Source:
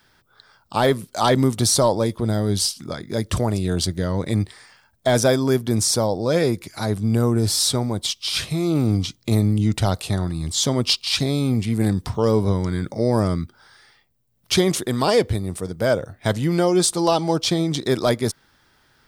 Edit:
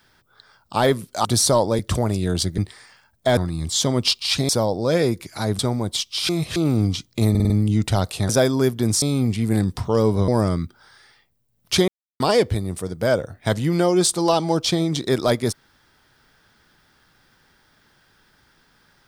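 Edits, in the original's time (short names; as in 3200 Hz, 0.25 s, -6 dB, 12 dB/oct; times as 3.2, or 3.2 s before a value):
1.25–1.54 cut
2.08–3.21 cut
4–4.38 cut
5.17–5.9 swap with 10.19–11.31
7–7.69 cut
8.39–8.66 reverse
9.4 stutter 0.05 s, 5 plays
12.57–13.07 cut
14.67–14.99 mute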